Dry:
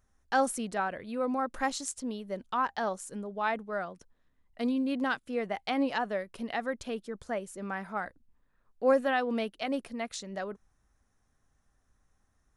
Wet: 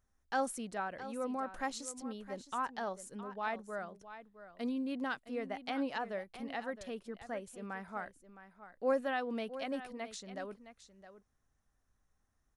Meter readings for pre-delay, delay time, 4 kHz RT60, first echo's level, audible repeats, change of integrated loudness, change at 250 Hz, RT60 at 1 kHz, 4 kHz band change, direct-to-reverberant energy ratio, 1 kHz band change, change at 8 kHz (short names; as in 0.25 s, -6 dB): none, 0.664 s, none, -13.0 dB, 1, -7.0 dB, -7.0 dB, none, -7.0 dB, none, -7.0 dB, -7.0 dB